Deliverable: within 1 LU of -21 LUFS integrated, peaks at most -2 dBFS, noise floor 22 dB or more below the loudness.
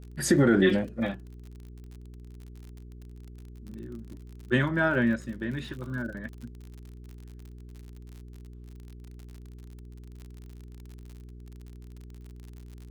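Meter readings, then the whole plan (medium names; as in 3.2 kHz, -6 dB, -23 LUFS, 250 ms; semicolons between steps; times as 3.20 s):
tick rate 50 per s; hum 60 Hz; highest harmonic 420 Hz; hum level -43 dBFS; loudness -27.0 LUFS; peak level -10.5 dBFS; loudness target -21.0 LUFS
-> de-click; de-hum 60 Hz, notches 7; trim +6 dB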